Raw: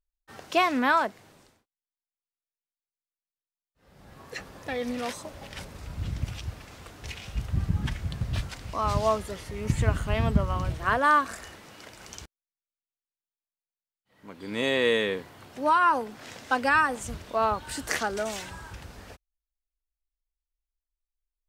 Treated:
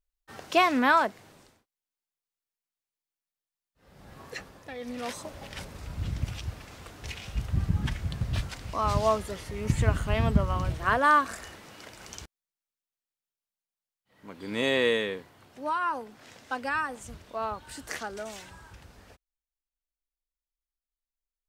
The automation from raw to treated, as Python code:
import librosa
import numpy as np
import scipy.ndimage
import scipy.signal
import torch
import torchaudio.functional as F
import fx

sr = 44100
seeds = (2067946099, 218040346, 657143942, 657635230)

y = fx.gain(x, sr, db=fx.line((4.26, 1.0), (4.74, -9.0), (5.18, 0.0), (14.79, 0.0), (15.33, -7.5)))